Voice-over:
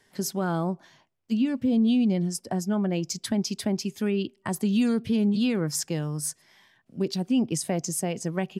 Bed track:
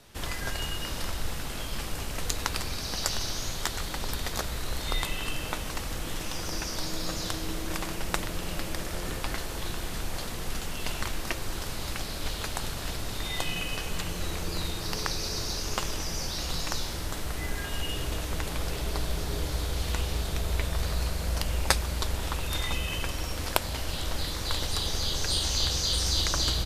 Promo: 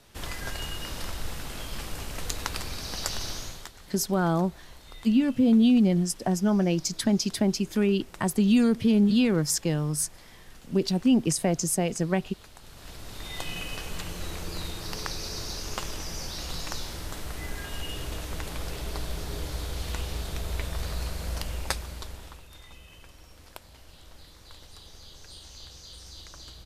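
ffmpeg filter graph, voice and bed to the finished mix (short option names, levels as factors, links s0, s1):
-filter_complex "[0:a]adelay=3750,volume=1.33[s0];[1:a]volume=3.98,afade=t=out:st=3.32:d=0.4:silence=0.177828,afade=t=in:st=12.62:d=0.94:silence=0.199526,afade=t=out:st=21.33:d=1.14:silence=0.158489[s1];[s0][s1]amix=inputs=2:normalize=0"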